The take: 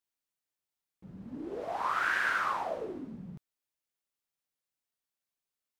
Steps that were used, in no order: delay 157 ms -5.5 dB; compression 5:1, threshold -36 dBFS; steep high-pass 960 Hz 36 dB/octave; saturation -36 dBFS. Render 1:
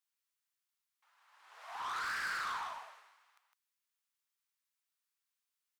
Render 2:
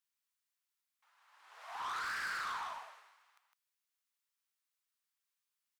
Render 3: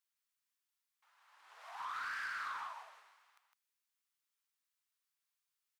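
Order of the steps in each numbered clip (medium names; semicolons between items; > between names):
steep high-pass > saturation > compression > delay; steep high-pass > saturation > delay > compression; delay > compression > steep high-pass > saturation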